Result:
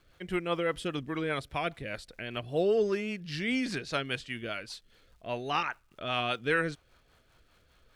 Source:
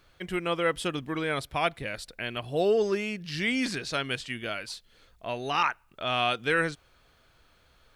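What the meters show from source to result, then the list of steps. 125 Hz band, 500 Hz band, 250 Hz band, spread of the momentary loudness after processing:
−1.5 dB, −2.0 dB, −1.5 dB, 12 LU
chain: high-shelf EQ 4,600 Hz −5 dB
surface crackle 470 per second −58 dBFS
rotating-speaker cabinet horn 5 Hz

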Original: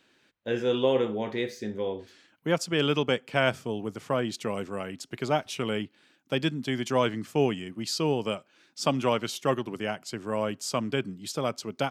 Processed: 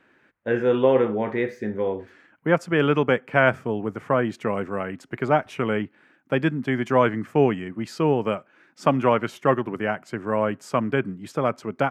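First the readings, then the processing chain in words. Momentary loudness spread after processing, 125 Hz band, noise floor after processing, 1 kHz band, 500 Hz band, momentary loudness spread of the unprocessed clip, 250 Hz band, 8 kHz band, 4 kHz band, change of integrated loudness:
10 LU, +5.5 dB, −61 dBFS, +7.0 dB, +6.0 dB, 10 LU, +5.5 dB, can't be measured, −6.0 dB, +5.5 dB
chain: high shelf with overshoot 2,700 Hz −13.5 dB, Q 1.5
level +5.5 dB

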